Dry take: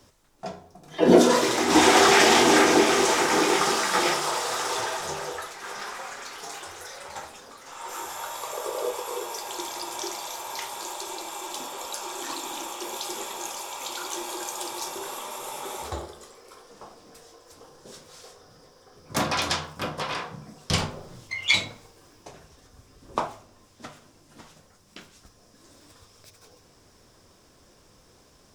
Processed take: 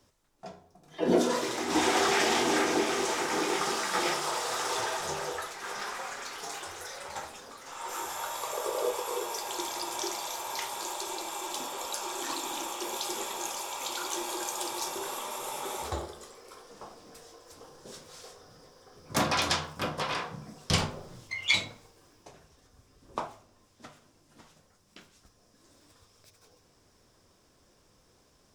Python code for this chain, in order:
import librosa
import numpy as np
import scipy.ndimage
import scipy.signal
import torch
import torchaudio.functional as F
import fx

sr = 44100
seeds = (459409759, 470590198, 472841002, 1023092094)

y = fx.rider(x, sr, range_db=4, speed_s=2.0)
y = F.gain(torch.from_numpy(y), -5.0).numpy()